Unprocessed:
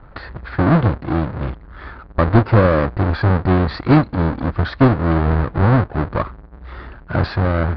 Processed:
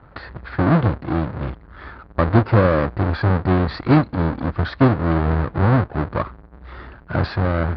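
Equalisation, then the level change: high-pass 54 Hz; -2.0 dB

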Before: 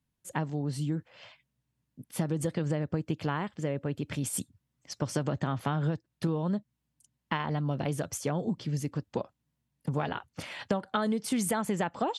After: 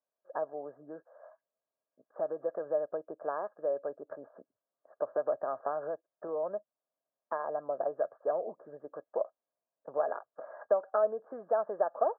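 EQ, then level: resonant high-pass 640 Hz, resonance Q 7.2; rippled Chebyshev low-pass 1.7 kHz, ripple 9 dB; distance through air 410 m; 0.0 dB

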